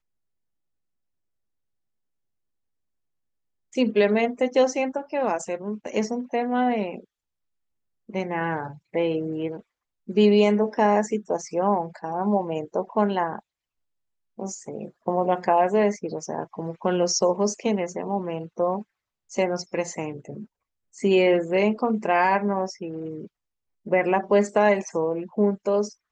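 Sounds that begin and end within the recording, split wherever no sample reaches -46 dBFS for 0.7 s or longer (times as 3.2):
3.73–7.04
8.09–13.4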